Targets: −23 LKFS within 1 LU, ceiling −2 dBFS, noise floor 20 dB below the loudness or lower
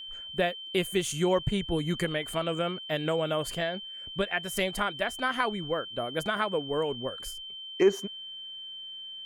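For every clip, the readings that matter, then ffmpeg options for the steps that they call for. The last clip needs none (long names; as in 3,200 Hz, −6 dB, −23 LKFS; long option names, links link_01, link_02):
interfering tone 3,100 Hz; level of the tone −39 dBFS; integrated loudness −30.5 LKFS; sample peak −12.0 dBFS; target loudness −23.0 LKFS
→ -af "bandreject=frequency=3100:width=30"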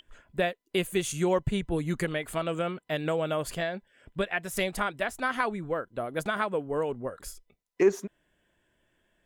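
interfering tone none found; integrated loudness −30.0 LKFS; sample peak −11.5 dBFS; target loudness −23.0 LKFS
→ -af "volume=7dB"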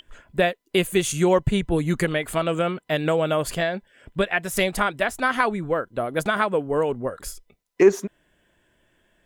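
integrated loudness −23.0 LKFS; sample peak −4.5 dBFS; background noise floor −70 dBFS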